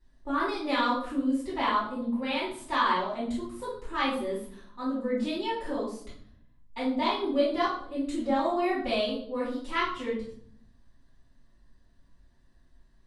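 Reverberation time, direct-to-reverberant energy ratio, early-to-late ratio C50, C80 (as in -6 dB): 0.60 s, -10.5 dB, 3.0 dB, 8.5 dB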